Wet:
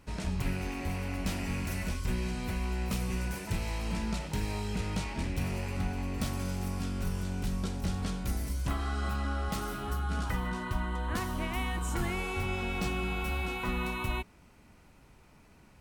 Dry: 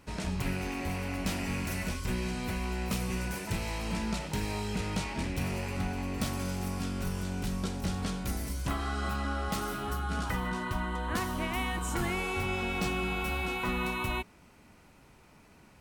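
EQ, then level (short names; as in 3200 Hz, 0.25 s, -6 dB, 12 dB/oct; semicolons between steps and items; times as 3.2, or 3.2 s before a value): low shelf 92 Hz +7.5 dB; -2.5 dB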